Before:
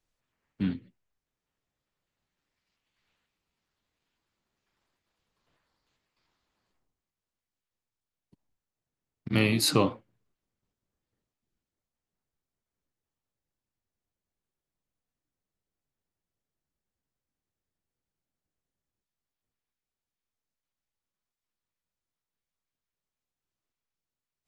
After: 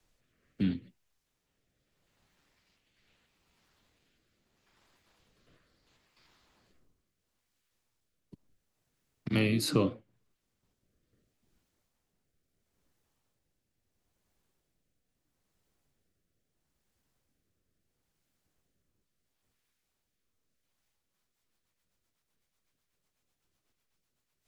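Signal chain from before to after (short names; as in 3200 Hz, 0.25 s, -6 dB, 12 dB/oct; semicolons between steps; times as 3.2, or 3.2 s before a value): rotary speaker horn 0.75 Hz, later 8 Hz, at 20.71; three-band squash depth 40%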